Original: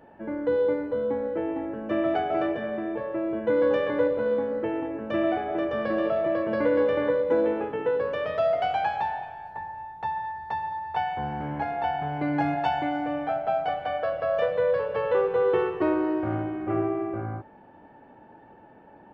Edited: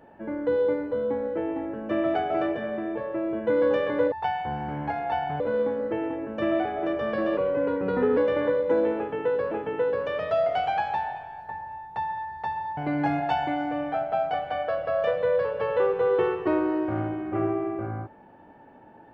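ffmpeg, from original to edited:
ffmpeg -i in.wav -filter_complex "[0:a]asplit=7[link_01][link_02][link_03][link_04][link_05][link_06][link_07];[link_01]atrim=end=4.122[link_08];[link_02]atrim=start=10.838:end=12.122[link_09];[link_03]atrim=start=4.118:end=6.094[link_10];[link_04]atrim=start=6.09:end=6.78,asetpts=PTS-STARTPTS,asetrate=37926,aresample=44100[link_11];[link_05]atrim=start=6.776:end=8.122[link_12];[link_06]atrim=start=7.578:end=10.842[link_13];[link_07]atrim=start=12.118[link_14];[link_08][link_09]acrossfade=duration=0.004:curve1=hsin:curve2=hsin[link_15];[link_15][link_10]acrossfade=duration=0.004:curve1=hsin:curve2=hsin[link_16];[link_16][link_11]acrossfade=duration=0.004:curve1=hsin:curve2=hsin[link_17];[link_17][link_12]acrossfade=duration=0.004:curve1=hsin:curve2=hsin[link_18];[link_18][link_13]acrossfade=duration=0.004:curve1=hsin:curve2=hsin[link_19];[link_19][link_14]acrossfade=duration=0.004:curve1=hsin:curve2=hsin" out.wav

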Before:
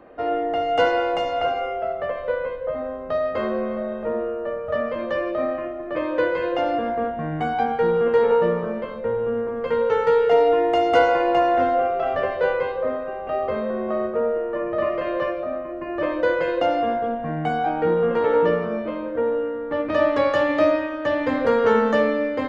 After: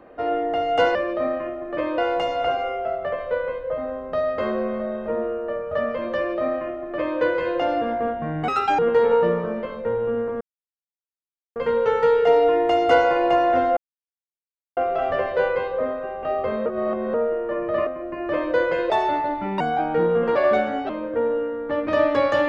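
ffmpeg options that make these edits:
ffmpeg -i in.wav -filter_complex "[0:a]asplit=14[link_01][link_02][link_03][link_04][link_05][link_06][link_07][link_08][link_09][link_10][link_11][link_12][link_13][link_14];[link_01]atrim=end=0.952[link_15];[link_02]atrim=start=5.128:end=6.162[link_16];[link_03]atrim=start=0.948:end=7.454[link_17];[link_04]atrim=start=7.45:end=7.98,asetpts=PTS-STARTPTS,asetrate=75852,aresample=44100[link_18];[link_05]atrim=start=7.976:end=9.6,asetpts=PTS-STARTPTS,afade=type=out:start_time=1.62:duration=0.004:curve=hsin,apad=pad_dur=1.15[link_19];[link_06]atrim=start=9.6:end=11.81,asetpts=PTS-STARTPTS,afade=type=in:duration=0.004:curve=hsin,afade=type=out:start_time=2.206:duration=0.004:curve=hsin,apad=pad_dur=1[link_20];[link_07]atrim=start=11.81:end=13.702,asetpts=PTS-STARTPTS,afade=type=in:duration=0.004:curve=hsin[link_21];[link_08]atrim=start=13.698:end=14.182,asetpts=PTS-STARTPTS,areverse[link_22];[link_09]atrim=start=14.178:end=14.912[link_23];[link_10]atrim=start=15.558:end=16.594[link_24];[link_11]atrim=start=16.59:end=17.48,asetpts=PTS-STARTPTS,asetrate=55566,aresample=44100[link_25];[link_12]atrim=start=17.476:end=18.234[link_26];[link_13]atrim=start=18.23:end=18.91,asetpts=PTS-STARTPTS,asetrate=55566,aresample=44100[link_27];[link_14]atrim=start=18.906[link_28];[link_15][link_16]acrossfade=duration=0.004:curve1=hsin:curve2=hsin[link_29];[link_29][link_17]acrossfade=duration=0.004:curve1=hsin:curve2=hsin[link_30];[link_30][link_18]acrossfade=duration=0.004:curve1=hsin:curve2=hsin[link_31];[link_19][link_20][link_21]concat=n=3:v=0:a=1[link_32];[link_31][link_32]acrossfade=duration=0.004:curve1=hsin:curve2=hsin[link_33];[link_33][link_22]acrossfade=duration=0.004:curve1=hsin:curve2=hsin[link_34];[link_34][link_23]acrossfade=duration=0.004:curve1=hsin:curve2=hsin[link_35];[link_35][link_24]acrossfade=duration=0.004:curve1=hsin:curve2=hsin[link_36];[link_36][link_25]acrossfade=duration=0.004:curve1=hsin:curve2=hsin[link_37];[link_37][link_26]acrossfade=duration=0.004:curve1=hsin:curve2=hsin[link_38];[link_38][link_27]acrossfade=duration=0.004:curve1=hsin:curve2=hsin[link_39];[link_39][link_28]acrossfade=duration=0.004:curve1=hsin:curve2=hsin" out.wav

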